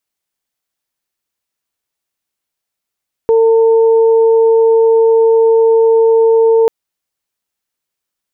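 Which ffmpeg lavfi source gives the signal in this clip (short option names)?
-f lavfi -i "aevalsrc='0.501*sin(2*PI*452*t)+0.0891*sin(2*PI*904*t)':d=3.39:s=44100"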